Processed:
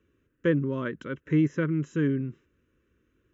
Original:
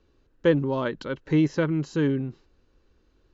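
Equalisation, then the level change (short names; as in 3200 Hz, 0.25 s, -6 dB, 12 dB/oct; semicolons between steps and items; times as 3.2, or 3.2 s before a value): fixed phaser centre 1900 Hz, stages 4; dynamic EQ 2800 Hz, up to -4 dB, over -47 dBFS, Q 1.4; HPF 87 Hz 12 dB/oct; 0.0 dB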